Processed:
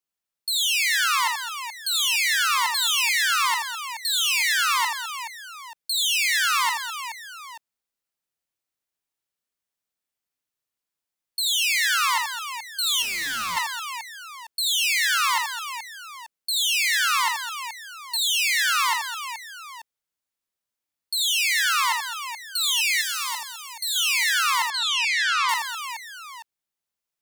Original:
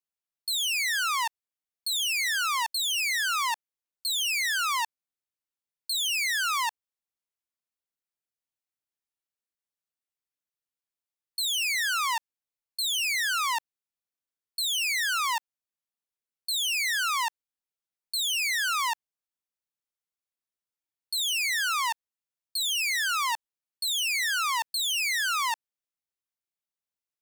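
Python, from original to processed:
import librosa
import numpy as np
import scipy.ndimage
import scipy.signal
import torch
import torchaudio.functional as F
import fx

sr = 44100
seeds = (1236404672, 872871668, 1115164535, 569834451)

p1 = x + fx.echo_multitap(x, sr, ms=(42, 48, 80, 209, 426, 883), db=(-17.5, -12.5, -4.5, -13.5, -9.5, -16.0), dry=0)
p2 = fx.overload_stage(p1, sr, gain_db=30.0, at=(13.02, 13.57))
p3 = fx.peak_eq(p2, sr, hz=1500.0, db=-11.0, octaves=2.0, at=(23.01, 23.96))
p4 = fx.lowpass(p3, sr, hz=5200.0, slope=12, at=(24.7, 25.49))
y = F.gain(torch.from_numpy(p4), 3.5).numpy()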